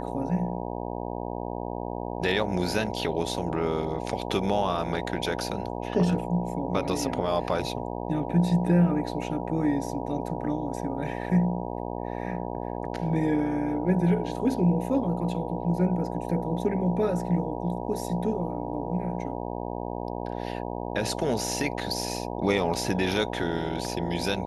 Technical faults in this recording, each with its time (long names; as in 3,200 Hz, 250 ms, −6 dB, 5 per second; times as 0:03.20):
mains buzz 60 Hz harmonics 16 −33 dBFS